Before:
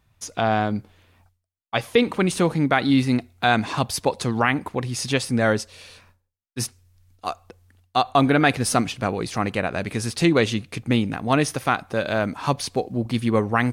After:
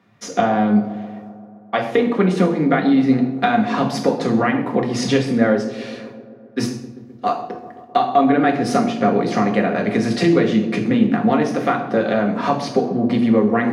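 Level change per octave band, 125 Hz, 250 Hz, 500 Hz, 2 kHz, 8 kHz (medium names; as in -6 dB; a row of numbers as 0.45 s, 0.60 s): +0.5 dB, +6.5 dB, +5.0 dB, 0.0 dB, -5.0 dB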